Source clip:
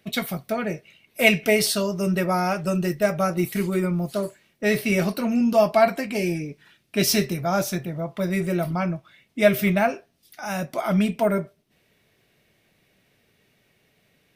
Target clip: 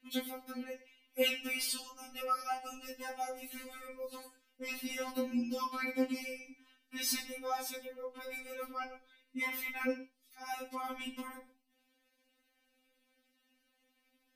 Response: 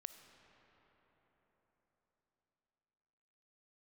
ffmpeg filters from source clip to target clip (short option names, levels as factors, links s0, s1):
-filter_complex "[1:a]atrim=start_sample=2205,afade=t=out:st=0.22:d=0.01,atrim=end_sample=10143,asetrate=57330,aresample=44100[s0];[0:a][s0]afir=irnorm=-1:irlink=0,afftfilt=real='re*3.46*eq(mod(b,12),0)':imag='im*3.46*eq(mod(b,12),0)':win_size=2048:overlap=0.75"